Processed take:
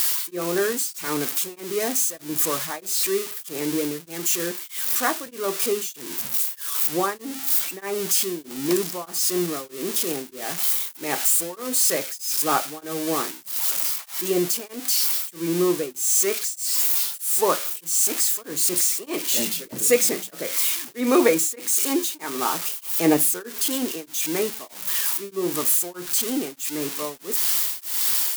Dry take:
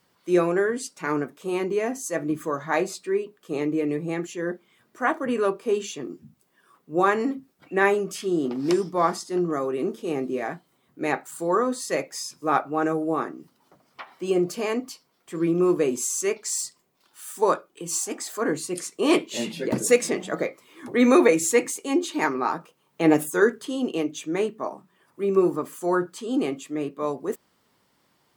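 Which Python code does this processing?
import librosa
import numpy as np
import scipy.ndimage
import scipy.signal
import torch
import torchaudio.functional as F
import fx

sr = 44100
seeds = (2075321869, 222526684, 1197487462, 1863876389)

y = x + 0.5 * 10.0 ** (-14.0 / 20.0) * np.diff(np.sign(x), prepend=np.sign(x[:1]))
y = y * np.abs(np.cos(np.pi * 1.6 * np.arange(len(y)) / sr))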